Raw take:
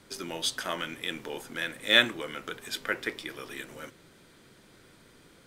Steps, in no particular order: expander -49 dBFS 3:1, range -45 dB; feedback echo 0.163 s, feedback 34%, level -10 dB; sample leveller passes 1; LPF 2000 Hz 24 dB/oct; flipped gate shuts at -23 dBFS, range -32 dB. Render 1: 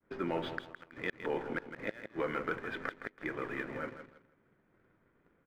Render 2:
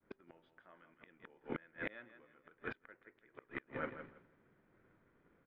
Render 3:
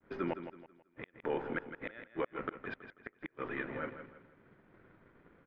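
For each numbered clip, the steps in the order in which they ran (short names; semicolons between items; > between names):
LPF > expander > flipped gate > feedback echo > sample leveller; sample leveller > feedback echo > expander > flipped gate > LPF; flipped gate > sample leveller > LPF > expander > feedback echo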